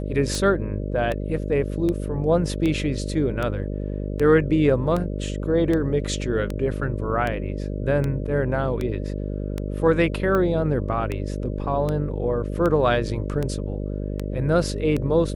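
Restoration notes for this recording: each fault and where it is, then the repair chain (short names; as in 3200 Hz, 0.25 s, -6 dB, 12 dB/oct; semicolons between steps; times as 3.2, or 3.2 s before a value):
buzz 50 Hz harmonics 12 -28 dBFS
tick 78 rpm -14 dBFS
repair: de-click; de-hum 50 Hz, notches 12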